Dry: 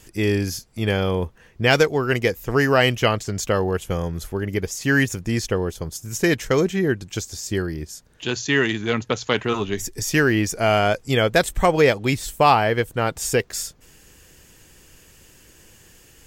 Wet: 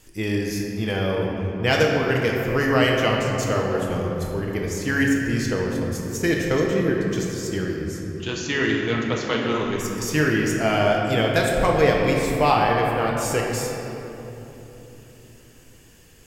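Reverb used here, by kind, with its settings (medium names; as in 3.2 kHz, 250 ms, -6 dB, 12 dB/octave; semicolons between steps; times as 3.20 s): simulated room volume 210 m³, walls hard, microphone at 0.56 m; trim -5 dB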